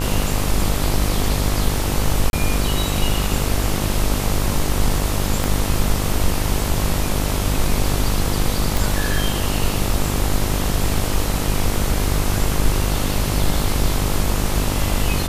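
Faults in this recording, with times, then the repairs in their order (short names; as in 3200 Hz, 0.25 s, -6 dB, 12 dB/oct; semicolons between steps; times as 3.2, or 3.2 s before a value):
buzz 50 Hz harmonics 27 -23 dBFS
2.3–2.33 gap 31 ms
5.44 pop
8.77 pop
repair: de-click; de-hum 50 Hz, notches 27; interpolate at 2.3, 31 ms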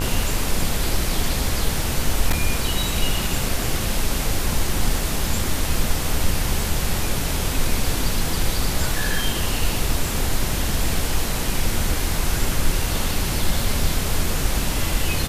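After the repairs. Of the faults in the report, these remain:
5.44 pop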